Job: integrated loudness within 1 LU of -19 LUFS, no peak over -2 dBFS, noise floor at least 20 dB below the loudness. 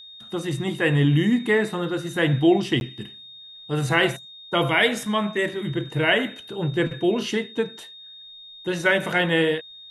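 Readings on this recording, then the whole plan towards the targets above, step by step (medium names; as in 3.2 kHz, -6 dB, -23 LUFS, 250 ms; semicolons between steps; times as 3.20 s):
dropouts 1; longest dropout 11 ms; steady tone 3.7 kHz; tone level -41 dBFS; loudness -22.5 LUFS; peak level -6.0 dBFS; loudness target -19.0 LUFS
-> interpolate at 2.80 s, 11 ms; band-stop 3.7 kHz, Q 30; trim +3.5 dB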